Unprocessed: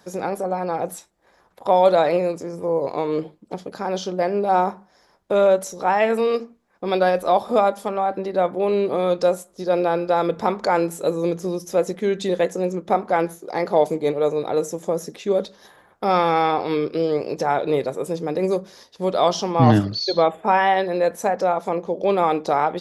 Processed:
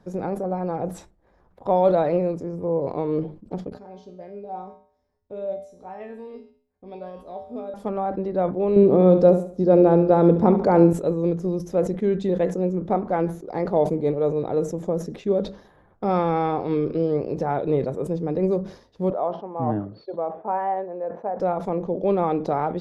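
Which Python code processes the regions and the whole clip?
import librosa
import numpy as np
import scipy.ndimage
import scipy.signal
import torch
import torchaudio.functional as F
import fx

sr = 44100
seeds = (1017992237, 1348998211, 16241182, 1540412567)

y = fx.chain(x, sr, fx.peak_eq(hz=1300.0, db=-6.5, octaves=0.74),
    fx.comb_fb(f0_hz=84.0, decay_s=0.53, harmonics='odd', damping=0.0, mix_pct=90), at=(3.7, 7.74))
y = fx.chain(y, sr, fx.peak_eq(hz=250.0, db=8.5, octaves=2.9),
    fx.echo_feedback(ms=71, feedback_pct=35, wet_db=-12.0), at=(8.76, 10.93))
y = fx.chain(y, sr, fx.tremolo(hz=1.3, depth=0.35),
    fx.bandpass_q(hz=780.0, q=1.1),
    fx.air_absorb(metres=310.0), at=(19.1, 21.4))
y = fx.tilt_eq(y, sr, slope=-4.0)
y = fx.sustainer(y, sr, db_per_s=130.0)
y = F.gain(torch.from_numpy(y), -6.5).numpy()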